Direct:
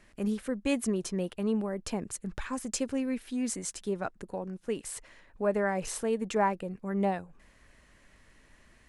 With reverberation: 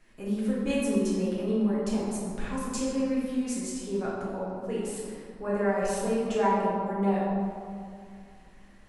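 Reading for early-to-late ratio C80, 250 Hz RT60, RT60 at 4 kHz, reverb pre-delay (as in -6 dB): 0.5 dB, 2.6 s, 1.2 s, 4 ms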